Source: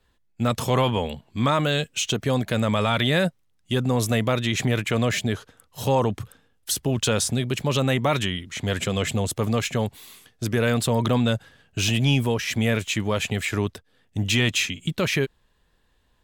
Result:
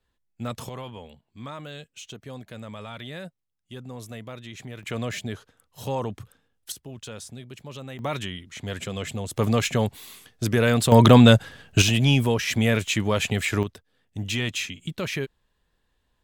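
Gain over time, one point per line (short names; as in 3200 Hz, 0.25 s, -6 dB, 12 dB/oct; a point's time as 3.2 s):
-9 dB
from 0.69 s -16.5 dB
from 4.83 s -7.5 dB
from 6.72 s -16.5 dB
from 7.99 s -7 dB
from 9.34 s +1.5 dB
from 10.92 s +9 dB
from 11.82 s +1 dB
from 13.63 s -6 dB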